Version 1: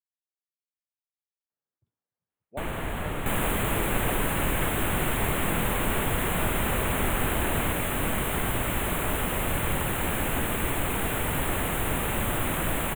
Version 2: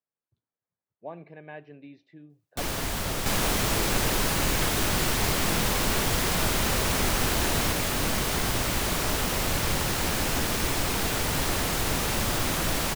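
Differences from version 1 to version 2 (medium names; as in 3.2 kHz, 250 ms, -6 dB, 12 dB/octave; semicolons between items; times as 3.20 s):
speech: entry -1.50 s; first sound: add treble shelf 6 kHz +11 dB; master: remove Butterworth band-stop 5.2 kHz, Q 0.94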